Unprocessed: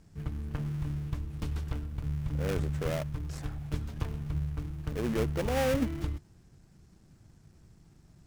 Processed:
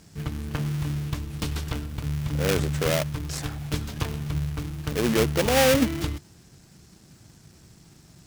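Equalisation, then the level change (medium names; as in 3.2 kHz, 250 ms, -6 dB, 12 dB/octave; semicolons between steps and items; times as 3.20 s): high-pass 120 Hz 6 dB/octave; peaking EQ 4 kHz +5.5 dB 2 oct; treble shelf 8 kHz +9 dB; +8.5 dB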